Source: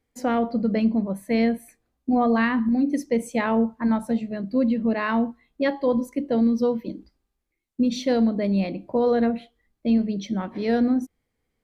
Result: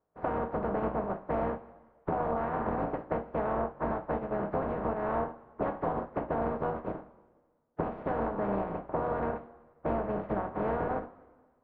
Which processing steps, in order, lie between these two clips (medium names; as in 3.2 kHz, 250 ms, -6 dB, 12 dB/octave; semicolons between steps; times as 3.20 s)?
spectral contrast reduction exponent 0.18; low-pass 1.2 kHz 24 dB/octave; peaking EQ 550 Hz +5 dB 1.5 oct; compression 10:1, threshold -29 dBFS, peak gain reduction 11.5 dB; on a send: reverberation, pre-delay 3 ms, DRR 3 dB